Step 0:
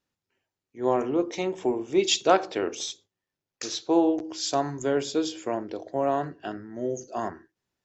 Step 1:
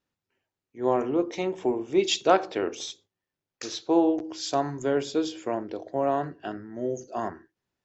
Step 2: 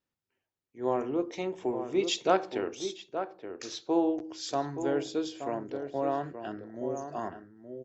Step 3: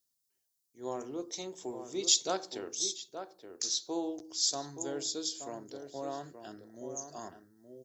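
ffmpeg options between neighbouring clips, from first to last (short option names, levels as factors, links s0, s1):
-af "highshelf=f=6200:g=-8.5"
-filter_complex "[0:a]asplit=2[s0][s1];[s1]adelay=874.6,volume=0.398,highshelf=f=4000:g=-19.7[s2];[s0][s2]amix=inputs=2:normalize=0,volume=0.562"
-af "aexciter=amount=9.9:drive=5.3:freq=3800,volume=0.355"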